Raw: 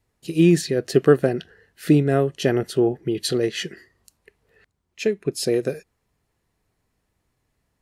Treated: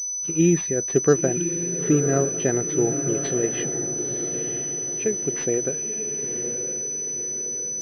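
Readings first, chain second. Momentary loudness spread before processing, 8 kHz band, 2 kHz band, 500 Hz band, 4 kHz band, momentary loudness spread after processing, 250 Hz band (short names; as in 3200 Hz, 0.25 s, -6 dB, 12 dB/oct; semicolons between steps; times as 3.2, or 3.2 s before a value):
13 LU, +17.5 dB, -3.0 dB, -2.0 dB, -10.5 dB, 6 LU, -2.5 dB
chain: on a send: diffused feedback echo 0.978 s, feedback 50%, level -7.5 dB; on the sum: pulse-width modulation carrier 6000 Hz; gain -3 dB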